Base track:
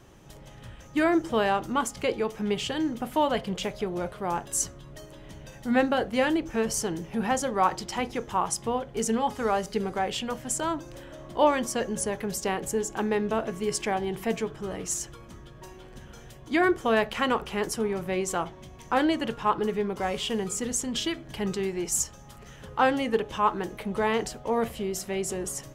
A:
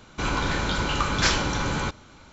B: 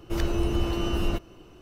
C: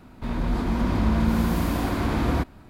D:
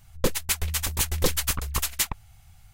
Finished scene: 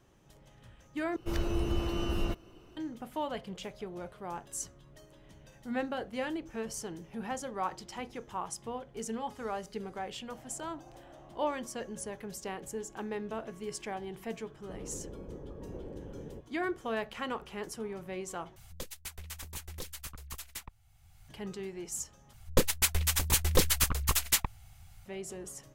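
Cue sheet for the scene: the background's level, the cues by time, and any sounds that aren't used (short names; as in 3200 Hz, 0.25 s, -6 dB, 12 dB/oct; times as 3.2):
base track -11 dB
1.16 replace with B -5.5 dB
10.23 add B -10.5 dB + band-pass 760 Hz, Q 9
14.5 add A -8.5 dB + ladder low-pass 530 Hz, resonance 55%
18.56 replace with D -17.5 dB + three-band squash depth 70%
22.33 replace with D -1.5 dB
not used: C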